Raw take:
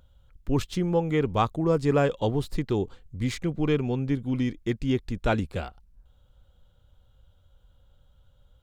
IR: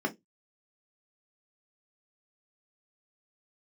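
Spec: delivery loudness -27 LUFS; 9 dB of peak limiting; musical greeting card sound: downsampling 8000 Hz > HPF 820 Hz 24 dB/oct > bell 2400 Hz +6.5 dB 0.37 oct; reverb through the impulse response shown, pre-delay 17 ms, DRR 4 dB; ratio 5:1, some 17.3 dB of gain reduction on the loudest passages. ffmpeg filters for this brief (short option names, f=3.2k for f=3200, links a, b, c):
-filter_complex "[0:a]acompressor=threshold=-39dB:ratio=5,alimiter=level_in=12.5dB:limit=-24dB:level=0:latency=1,volume=-12.5dB,asplit=2[a][b];[1:a]atrim=start_sample=2205,adelay=17[c];[b][c]afir=irnorm=-1:irlink=0,volume=-11.5dB[d];[a][d]amix=inputs=2:normalize=0,aresample=8000,aresample=44100,highpass=f=820:w=0.5412,highpass=f=820:w=1.3066,equalizer=f=2.4k:t=o:w=0.37:g=6.5,volume=28dB"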